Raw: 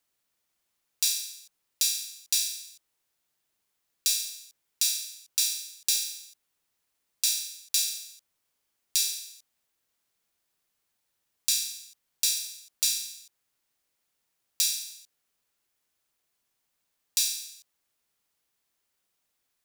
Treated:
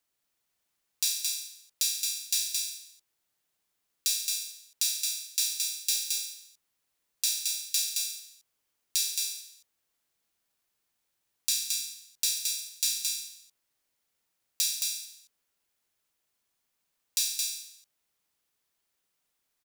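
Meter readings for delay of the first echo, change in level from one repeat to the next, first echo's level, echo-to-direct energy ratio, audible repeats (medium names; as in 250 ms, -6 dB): 220 ms, no regular repeats, -4.0 dB, -4.0 dB, 1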